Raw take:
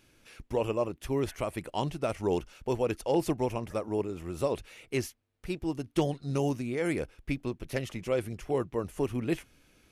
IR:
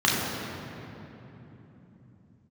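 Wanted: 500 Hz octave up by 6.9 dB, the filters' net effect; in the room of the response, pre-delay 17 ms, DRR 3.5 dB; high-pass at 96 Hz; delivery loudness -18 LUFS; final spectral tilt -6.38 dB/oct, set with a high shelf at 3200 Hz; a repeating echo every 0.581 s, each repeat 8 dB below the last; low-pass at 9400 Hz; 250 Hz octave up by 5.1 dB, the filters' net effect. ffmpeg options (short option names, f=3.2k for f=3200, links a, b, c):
-filter_complex "[0:a]highpass=96,lowpass=9.4k,equalizer=f=250:t=o:g=4,equalizer=f=500:t=o:g=7,highshelf=f=3.2k:g=3.5,aecho=1:1:581|1162|1743|2324|2905:0.398|0.159|0.0637|0.0255|0.0102,asplit=2[a][b];[1:a]atrim=start_sample=2205,adelay=17[c];[b][c]afir=irnorm=-1:irlink=0,volume=-21dB[d];[a][d]amix=inputs=2:normalize=0,volume=5.5dB"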